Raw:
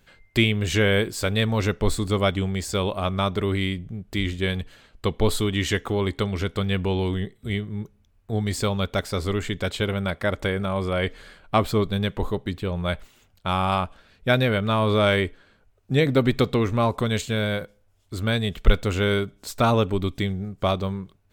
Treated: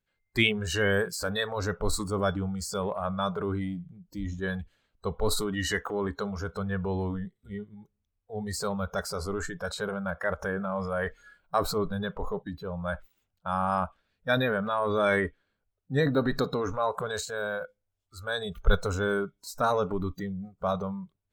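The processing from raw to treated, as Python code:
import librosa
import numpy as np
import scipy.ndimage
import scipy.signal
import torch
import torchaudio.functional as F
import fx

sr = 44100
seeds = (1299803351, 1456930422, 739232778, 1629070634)

y = fx.high_shelf(x, sr, hz=9100.0, db=7.0, at=(10.89, 11.67))
y = fx.noise_reduce_blind(y, sr, reduce_db=21)
y = fx.transient(y, sr, attack_db=-2, sustain_db=6)
y = fx.dynamic_eq(y, sr, hz=2100.0, q=1.2, threshold_db=-42.0, ratio=4.0, max_db=5)
y = y * librosa.db_to_amplitude(-4.5)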